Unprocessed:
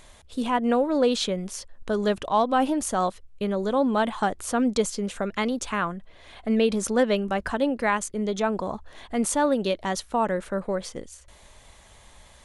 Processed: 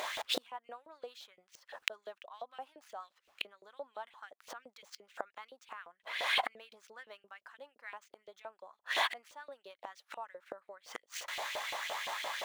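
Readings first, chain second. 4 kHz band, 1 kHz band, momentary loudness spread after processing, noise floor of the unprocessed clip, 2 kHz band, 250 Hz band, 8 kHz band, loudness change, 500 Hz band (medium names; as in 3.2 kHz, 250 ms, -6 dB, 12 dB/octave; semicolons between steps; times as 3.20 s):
-4.0 dB, -15.0 dB, 21 LU, -52 dBFS, -6.5 dB, -34.5 dB, -16.0 dB, -14.5 dB, -22.0 dB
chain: median filter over 5 samples; inverted gate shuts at -27 dBFS, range -39 dB; LFO high-pass saw up 5.8 Hz 520–3000 Hz; trim +14.5 dB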